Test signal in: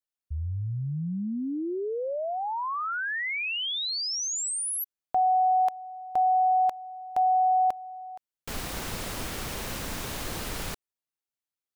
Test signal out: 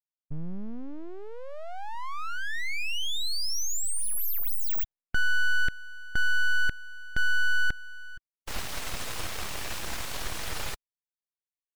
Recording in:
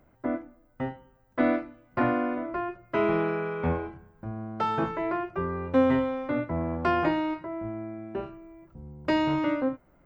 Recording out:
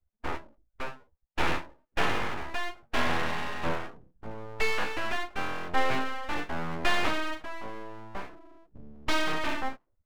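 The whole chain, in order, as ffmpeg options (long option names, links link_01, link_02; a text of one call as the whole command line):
ffmpeg -i in.wav -af "afftdn=noise_reduction=35:noise_floor=-44,equalizer=frequency=220:width=0.51:gain=-10.5,aeval=exprs='abs(val(0))':channel_layout=same,volume=5.5dB" out.wav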